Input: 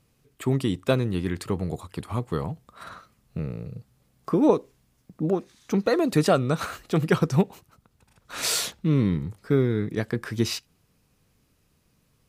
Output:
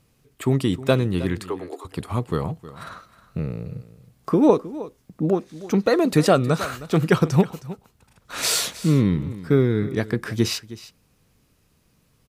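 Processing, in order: 1.41–1.85 s: rippled Chebyshev high-pass 270 Hz, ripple 6 dB; delay 314 ms -16.5 dB; trim +3.5 dB

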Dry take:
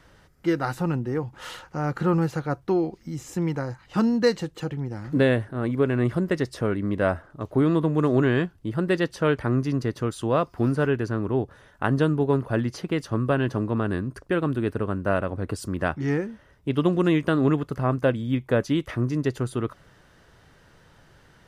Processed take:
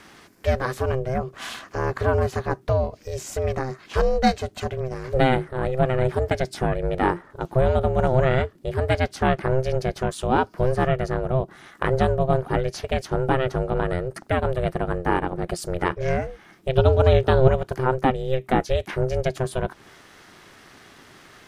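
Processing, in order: 16.75–17.48 s: ten-band graphic EQ 125 Hz +10 dB, 1 kHz +4 dB, 2 kHz -6 dB, 4 kHz +7 dB, 8 kHz -6 dB; ring modulator 260 Hz; tape noise reduction on one side only encoder only; trim +4.5 dB

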